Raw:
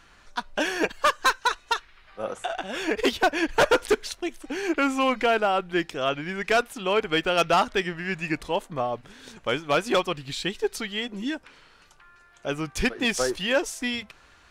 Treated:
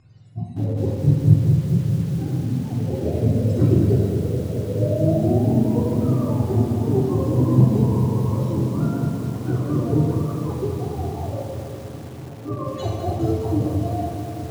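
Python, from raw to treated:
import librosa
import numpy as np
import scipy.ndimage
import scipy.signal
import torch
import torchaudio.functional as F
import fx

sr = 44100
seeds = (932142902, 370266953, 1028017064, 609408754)

p1 = fx.octave_mirror(x, sr, pivot_hz=410.0)
p2 = scipy.signal.sosfilt(scipy.signal.butter(4, 6700.0, 'lowpass', fs=sr, output='sos'), p1)
p3 = fx.high_shelf(p2, sr, hz=4500.0, db=-5.0)
p4 = p3 + fx.echo_diffused(p3, sr, ms=1163, feedback_pct=60, wet_db=-14.5, dry=0)
p5 = fx.room_shoebox(p4, sr, seeds[0], volume_m3=1300.0, walls='mixed', distance_m=3.4)
p6 = fx.echo_crushed(p5, sr, ms=207, feedback_pct=80, bits=6, wet_db=-8.5)
y = p6 * librosa.db_to_amplitude(-3.5)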